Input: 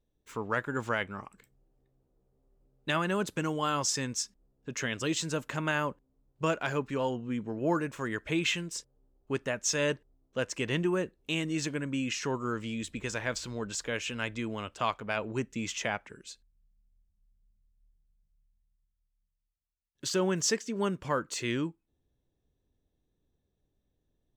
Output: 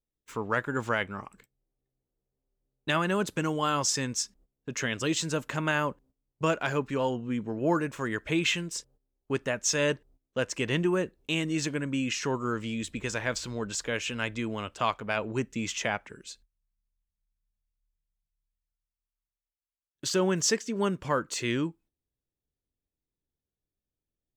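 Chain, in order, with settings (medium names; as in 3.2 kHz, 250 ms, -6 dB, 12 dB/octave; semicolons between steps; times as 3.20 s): gate -58 dBFS, range -16 dB; trim +2.5 dB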